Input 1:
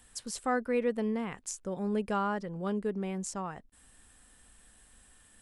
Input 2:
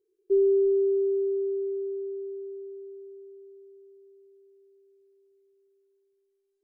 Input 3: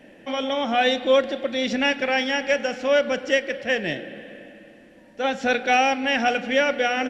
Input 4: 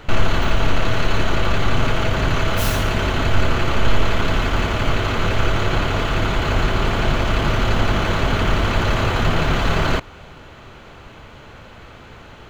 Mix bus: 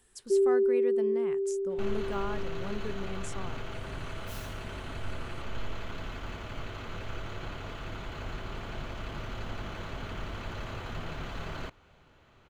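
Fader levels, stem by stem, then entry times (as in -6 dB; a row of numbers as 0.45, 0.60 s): -6.0 dB, -2.5 dB, off, -20.0 dB; 0.00 s, 0.00 s, off, 1.70 s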